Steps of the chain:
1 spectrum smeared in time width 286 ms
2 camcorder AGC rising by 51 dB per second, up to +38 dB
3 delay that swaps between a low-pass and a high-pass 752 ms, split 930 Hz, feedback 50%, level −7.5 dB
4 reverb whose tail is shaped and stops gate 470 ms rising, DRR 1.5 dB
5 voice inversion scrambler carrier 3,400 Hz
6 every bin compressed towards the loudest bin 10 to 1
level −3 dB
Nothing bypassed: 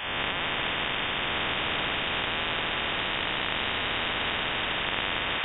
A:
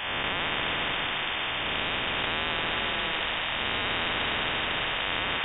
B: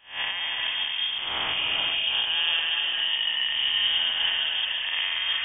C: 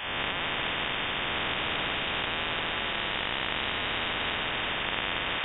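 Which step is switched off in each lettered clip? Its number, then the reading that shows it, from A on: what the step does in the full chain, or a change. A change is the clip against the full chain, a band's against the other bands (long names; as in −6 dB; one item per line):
2, change in crest factor −1.5 dB
6, 4 kHz band +14.0 dB
3, change in integrated loudness −1.5 LU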